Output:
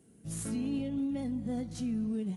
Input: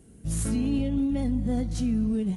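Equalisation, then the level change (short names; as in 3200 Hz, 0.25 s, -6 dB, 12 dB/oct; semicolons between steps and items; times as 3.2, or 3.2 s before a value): HPF 130 Hz 12 dB/oct; -6.5 dB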